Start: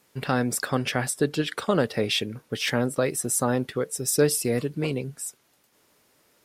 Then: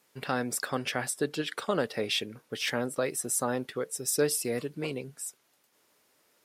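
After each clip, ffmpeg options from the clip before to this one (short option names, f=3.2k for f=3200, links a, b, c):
-af "lowshelf=f=180:g=-11,volume=-4dB"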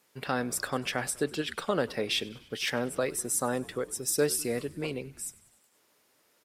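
-filter_complex "[0:a]asplit=6[a][b][c][d][e][f];[b]adelay=98,afreqshift=-71,volume=-21.5dB[g];[c]adelay=196,afreqshift=-142,volume=-25.4dB[h];[d]adelay=294,afreqshift=-213,volume=-29.3dB[i];[e]adelay=392,afreqshift=-284,volume=-33.1dB[j];[f]adelay=490,afreqshift=-355,volume=-37dB[k];[a][g][h][i][j][k]amix=inputs=6:normalize=0"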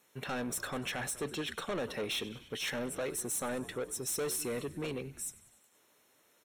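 -af "asoftclip=type=tanh:threshold=-31.5dB,asuperstop=centerf=4800:order=12:qfactor=6.6"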